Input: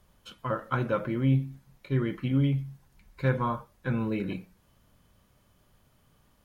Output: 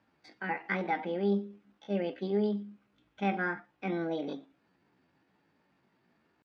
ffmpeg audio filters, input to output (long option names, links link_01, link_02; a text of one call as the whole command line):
ffmpeg -i in.wav -af "asetrate=66075,aresample=44100,atempo=0.66742,highpass=200,lowpass=3100,volume=-3dB" out.wav